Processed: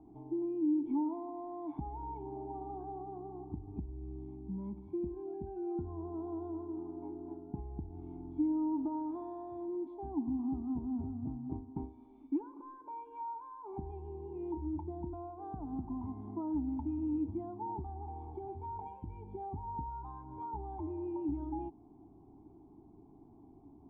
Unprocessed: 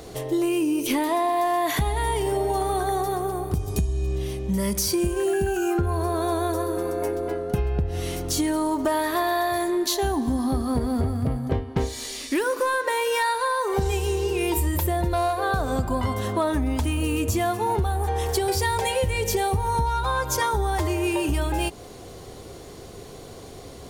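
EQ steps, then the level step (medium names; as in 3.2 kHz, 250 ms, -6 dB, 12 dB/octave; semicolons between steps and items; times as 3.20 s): cascade formant filter u; bass shelf 320 Hz -6.5 dB; static phaser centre 1.9 kHz, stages 6; +2.0 dB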